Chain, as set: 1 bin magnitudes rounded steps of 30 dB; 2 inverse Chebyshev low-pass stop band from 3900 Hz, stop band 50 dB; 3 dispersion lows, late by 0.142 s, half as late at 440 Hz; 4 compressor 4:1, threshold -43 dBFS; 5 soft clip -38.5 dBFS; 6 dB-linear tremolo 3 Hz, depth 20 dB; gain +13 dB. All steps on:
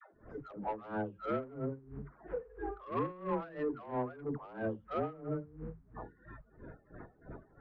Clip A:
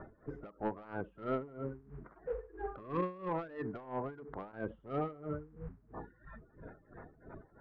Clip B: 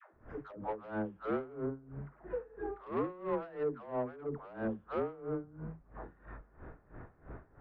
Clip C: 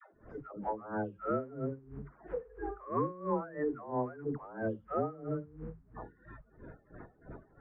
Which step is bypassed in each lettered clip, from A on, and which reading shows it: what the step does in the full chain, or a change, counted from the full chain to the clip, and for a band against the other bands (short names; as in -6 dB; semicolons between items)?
3, crest factor change +1.5 dB; 1, 500 Hz band +2.5 dB; 5, distortion -16 dB